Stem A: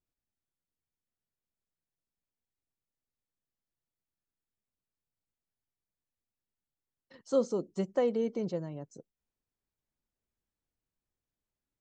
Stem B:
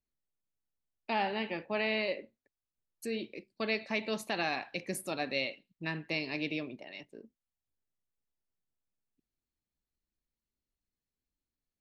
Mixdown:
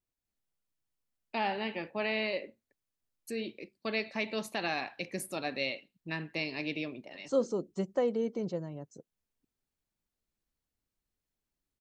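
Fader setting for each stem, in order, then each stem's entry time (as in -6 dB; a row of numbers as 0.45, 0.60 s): -1.0, -0.5 dB; 0.00, 0.25 s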